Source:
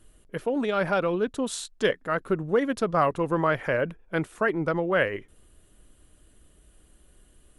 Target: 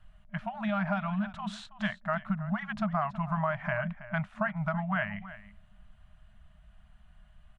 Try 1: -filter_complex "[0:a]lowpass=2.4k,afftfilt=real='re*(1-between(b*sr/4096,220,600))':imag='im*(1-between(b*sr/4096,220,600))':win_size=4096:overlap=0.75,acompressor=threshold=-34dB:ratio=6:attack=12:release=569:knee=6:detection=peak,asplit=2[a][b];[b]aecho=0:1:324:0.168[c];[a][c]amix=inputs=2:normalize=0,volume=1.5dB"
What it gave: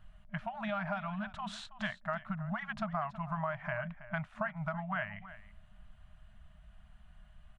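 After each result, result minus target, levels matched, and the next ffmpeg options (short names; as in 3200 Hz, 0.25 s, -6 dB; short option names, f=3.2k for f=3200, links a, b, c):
compressor: peak gain reduction +5.5 dB; 250 Hz band -2.5 dB
-filter_complex "[0:a]lowpass=2.4k,afftfilt=real='re*(1-between(b*sr/4096,220,600))':imag='im*(1-between(b*sr/4096,220,600))':win_size=4096:overlap=0.75,acompressor=threshold=-27dB:ratio=6:attack=12:release=569:knee=6:detection=peak,asplit=2[a][b];[b]aecho=0:1:324:0.168[c];[a][c]amix=inputs=2:normalize=0,volume=1.5dB"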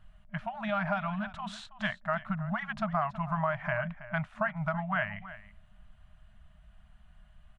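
250 Hz band -3.0 dB
-filter_complex "[0:a]lowpass=2.4k,adynamicequalizer=threshold=0.00398:dfrequency=200:dqfactor=4.3:tfrequency=200:tqfactor=4.3:attack=5:release=100:ratio=0.375:range=4:mode=boostabove:tftype=bell,afftfilt=real='re*(1-between(b*sr/4096,220,600))':imag='im*(1-between(b*sr/4096,220,600))':win_size=4096:overlap=0.75,acompressor=threshold=-27dB:ratio=6:attack=12:release=569:knee=6:detection=peak,asplit=2[a][b];[b]aecho=0:1:324:0.168[c];[a][c]amix=inputs=2:normalize=0,volume=1.5dB"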